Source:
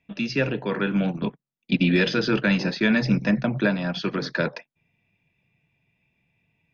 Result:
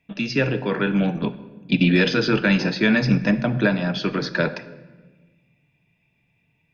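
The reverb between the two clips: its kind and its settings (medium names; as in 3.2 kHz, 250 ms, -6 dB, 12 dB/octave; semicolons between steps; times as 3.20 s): simulated room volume 1000 m³, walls mixed, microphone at 0.41 m; trim +2.5 dB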